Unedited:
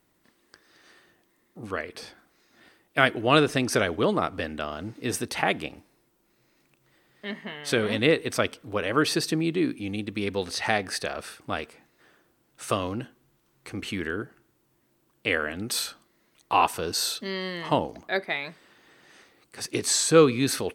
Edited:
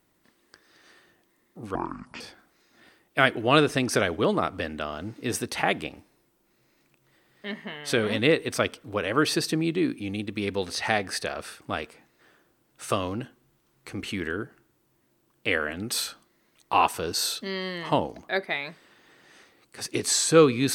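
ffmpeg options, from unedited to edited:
-filter_complex "[0:a]asplit=3[a][b][c];[a]atrim=end=1.754[d];[b]atrim=start=1.75:end=2,asetpts=PTS-STARTPTS,asetrate=24255,aresample=44100,atrim=end_sample=20045,asetpts=PTS-STARTPTS[e];[c]atrim=start=1.996[f];[d][e]acrossfade=d=0.004:c1=hsin:c2=hsin[g];[g][f]acrossfade=d=0.004:c1=hsin:c2=hsin"

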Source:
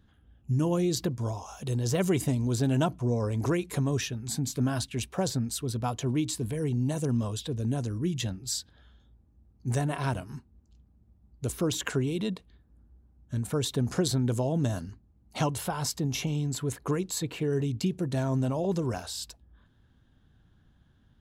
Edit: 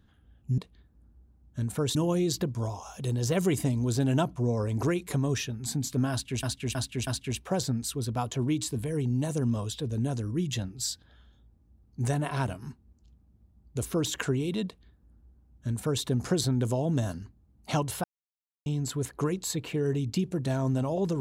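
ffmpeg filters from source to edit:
-filter_complex "[0:a]asplit=8[a][b][c][d][e][f][g][h];[a]atrim=end=0.582[i];[b]atrim=start=12.328:end=13.702[j];[c]atrim=start=0.578:end=5.062[k];[d]atrim=start=4.738:end=5.062[l];[e]atrim=start=4.738:end=5.062[m];[f]atrim=start=4.738:end=15.71,asetpts=PTS-STARTPTS,afade=t=out:st=10.968:d=0.004:c=hsin[n];[g]atrim=start=15.71:end=16.33,asetpts=PTS-STARTPTS,volume=0[o];[h]atrim=start=16.33,asetpts=PTS-STARTPTS,afade=t=in:d=0.004:c=hsin[p];[i][j]acrossfade=d=0.004:c1=hsin:c2=hsin[q];[q][k]acrossfade=d=0.004:c1=hsin:c2=hsin[r];[r][l]acrossfade=d=0.004:c1=hsin:c2=hsin[s];[s][m]acrossfade=d=0.004:c1=hsin:c2=hsin[t];[n][o][p]concat=n=3:v=0:a=1[u];[t][u]acrossfade=d=0.004:c1=hsin:c2=hsin"

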